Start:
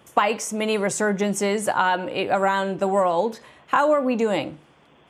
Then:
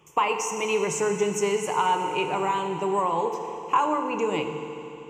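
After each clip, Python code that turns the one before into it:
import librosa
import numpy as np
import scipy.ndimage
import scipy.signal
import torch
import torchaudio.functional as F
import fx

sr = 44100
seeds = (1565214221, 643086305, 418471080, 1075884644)

y = fx.ripple_eq(x, sr, per_octave=0.74, db=13)
y = fx.rev_fdn(y, sr, rt60_s=3.2, lf_ratio=1.0, hf_ratio=0.95, size_ms=20.0, drr_db=4.5)
y = y * librosa.db_to_amplitude(-6.5)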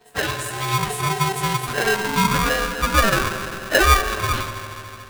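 y = fx.partial_stretch(x, sr, pct=108)
y = fx.filter_sweep_highpass(y, sr, from_hz=110.0, to_hz=670.0, start_s=1.61, end_s=2.58, q=6.5)
y = y * np.sign(np.sin(2.0 * np.pi * 580.0 * np.arange(len(y)) / sr))
y = y * librosa.db_to_amplitude(3.5)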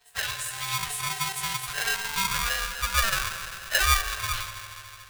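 y = fx.tone_stack(x, sr, knobs='10-0-10')
y = y * librosa.db_to_amplitude(-1.0)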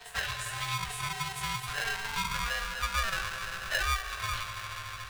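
y = fx.lowpass(x, sr, hz=3500.0, slope=6)
y = fx.comb_fb(y, sr, f0_hz=58.0, decay_s=0.19, harmonics='all', damping=0.0, mix_pct=80)
y = fx.band_squash(y, sr, depth_pct=70)
y = y * librosa.db_to_amplitude(1.0)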